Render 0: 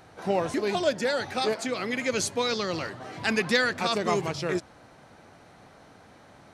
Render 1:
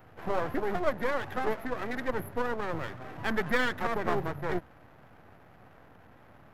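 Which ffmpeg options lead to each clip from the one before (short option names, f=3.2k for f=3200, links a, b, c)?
-filter_complex "[0:a]afftfilt=real='re*(1-between(b*sr/4096,2000,11000))':imag='im*(1-between(b*sr/4096,2000,11000))':win_size=4096:overlap=0.75,acrossover=split=140|4000[a][b][c];[b]aeval=exprs='max(val(0),0)':c=same[d];[a][d][c]amix=inputs=3:normalize=0,volume=1dB"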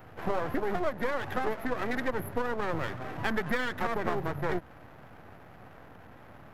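-af "acompressor=threshold=-29dB:ratio=6,volume=4.5dB"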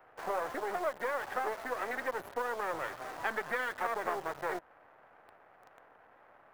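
-filter_complex "[0:a]acrossover=split=420 2400:gain=0.0891 1 0.224[a][b][c];[a][b][c]amix=inputs=3:normalize=0,asplit=2[d][e];[e]acrusher=bits=6:mix=0:aa=0.000001,volume=-3.5dB[f];[d][f]amix=inputs=2:normalize=0,volume=-5dB"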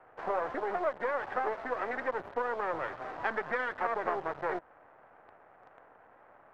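-af "adynamicsmooth=sensitivity=0.5:basefreq=2.7k,volume=3dB"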